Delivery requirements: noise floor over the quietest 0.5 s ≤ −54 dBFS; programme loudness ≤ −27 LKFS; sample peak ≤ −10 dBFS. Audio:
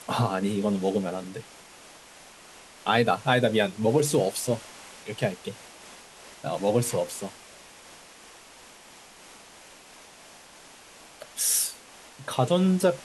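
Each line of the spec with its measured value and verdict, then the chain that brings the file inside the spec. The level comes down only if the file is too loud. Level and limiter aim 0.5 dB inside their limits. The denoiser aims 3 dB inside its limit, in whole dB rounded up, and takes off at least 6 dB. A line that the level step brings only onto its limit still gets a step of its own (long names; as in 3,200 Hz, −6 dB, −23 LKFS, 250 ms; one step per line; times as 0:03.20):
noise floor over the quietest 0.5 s −50 dBFS: out of spec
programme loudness −26.0 LKFS: out of spec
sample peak −9.0 dBFS: out of spec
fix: broadband denoise 6 dB, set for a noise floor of −50 dBFS
level −1.5 dB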